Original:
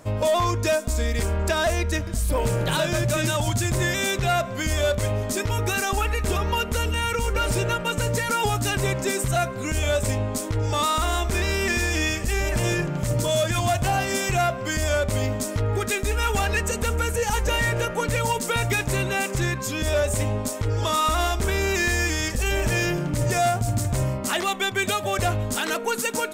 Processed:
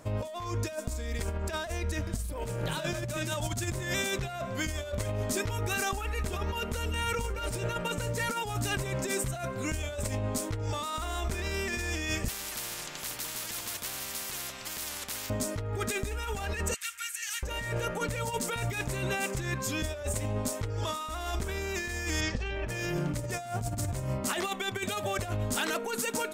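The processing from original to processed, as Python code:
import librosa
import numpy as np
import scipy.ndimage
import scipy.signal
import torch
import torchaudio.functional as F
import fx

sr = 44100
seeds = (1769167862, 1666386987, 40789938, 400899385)

y = fx.spectral_comp(x, sr, ratio=10.0, at=(12.28, 15.3))
y = fx.cheby2_highpass(y, sr, hz=670.0, order=4, stop_db=50, at=(16.74, 17.43))
y = fx.lowpass(y, sr, hz=fx.line((22.2, 6600.0), (22.68, 3300.0)), slope=24, at=(22.2, 22.68), fade=0.02)
y = fx.over_compress(y, sr, threshold_db=-25.0, ratio=-0.5)
y = F.gain(torch.from_numpy(y), -6.5).numpy()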